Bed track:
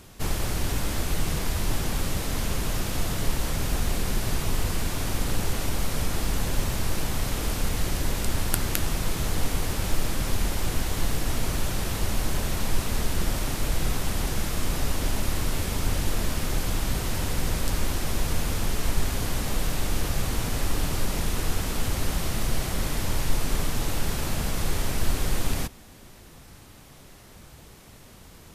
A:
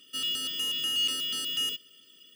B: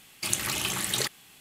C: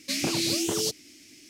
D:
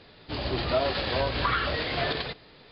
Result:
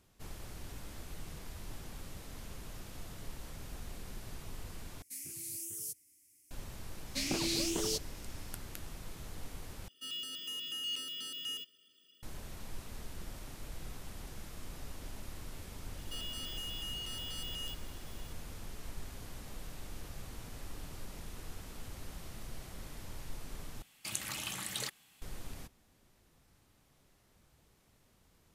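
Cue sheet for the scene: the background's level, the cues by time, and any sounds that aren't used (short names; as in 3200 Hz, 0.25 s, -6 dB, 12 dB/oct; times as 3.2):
bed track -19.5 dB
5.02 replace with C -16.5 dB + EQ curve 100 Hz 0 dB, 240 Hz -14 dB, 360 Hz -11 dB, 730 Hz -30 dB, 1100 Hz -21 dB, 2000 Hz -7 dB, 3900 Hz -17 dB, 10000 Hz +14 dB
7.07 add C -7 dB
9.88 replace with A -10.5 dB
15.98 add A -6 dB + limiter -30.5 dBFS
23.82 replace with B -10.5 dB + notch 380 Hz, Q 5
not used: D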